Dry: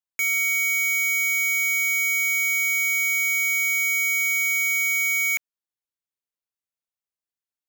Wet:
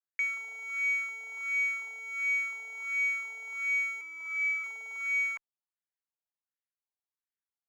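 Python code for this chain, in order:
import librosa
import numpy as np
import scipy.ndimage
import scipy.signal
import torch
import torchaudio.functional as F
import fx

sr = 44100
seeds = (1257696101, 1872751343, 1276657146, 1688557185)

y = fx.cheby_harmonics(x, sr, harmonics=(4, 6), levels_db=(-29, -13), full_scale_db=-22.5)
y = fx.filter_lfo_bandpass(y, sr, shape='sine', hz=1.4, low_hz=720.0, high_hz=1900.0, q=3.4)
y = fx.robotise(y, sr, hz=326.0, at=(4.01, 4.64))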